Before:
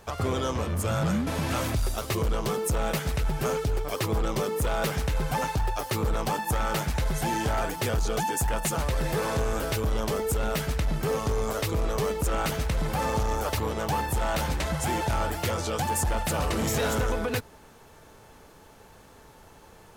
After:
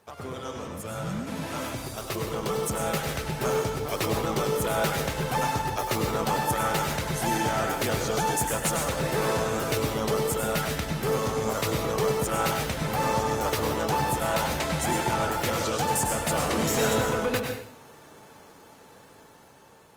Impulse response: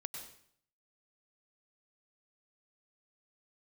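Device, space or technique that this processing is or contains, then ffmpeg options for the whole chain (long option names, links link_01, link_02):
far-field microphone of a smart speaker: -filter_complex "[1:a]atrim=start_sample=2205[link_01];[0:a][link_01]afir=irnorm=-1:irlink=0,highpass=130,dynaudnorm=framelen=950:gausssize=5:maxgain=9dB,volume=-4dB" -ar 48000 -c:a libopus -b:a 32k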